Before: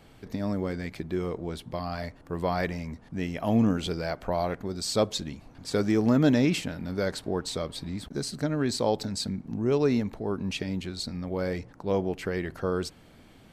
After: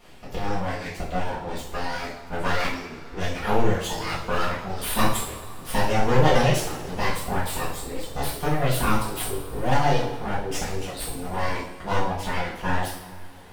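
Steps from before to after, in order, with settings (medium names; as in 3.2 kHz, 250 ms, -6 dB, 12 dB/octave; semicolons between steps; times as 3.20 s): full-wave rectifier; reverb removal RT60 1.1 s; two-slope reverb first 0.58 s, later 3.5 s, from -19 dB, DRR -9 dB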